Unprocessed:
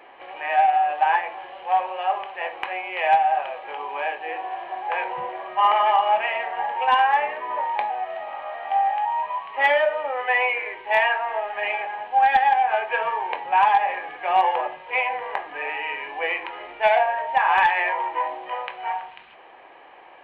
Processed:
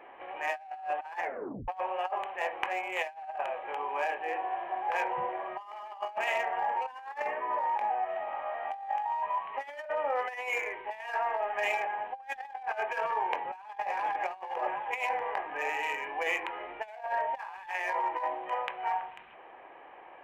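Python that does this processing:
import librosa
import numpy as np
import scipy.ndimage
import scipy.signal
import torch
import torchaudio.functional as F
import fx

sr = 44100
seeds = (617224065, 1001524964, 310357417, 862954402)

y = fx.bandpass_edges(x, sr, low_hz=100.0, high_hz=3300.0, at=(6.68, 8.09))
y = fx.echo_throw(y, sr, start_s=13.47, length_s=0.65, ms=380, feedback_pct=60, wet_db=-8.5)
y = fx.edit(y, sr, fx.tape_stop(start_s=1.22, length_s=0.46), tone=tone)
y = fx.wiener(y, sr, points=9)
y = fx.over_compress(y, sr, threshold_db=-26.0, ratio=-0.5)
y = y * librosa.db_to_amplitude(-6.5)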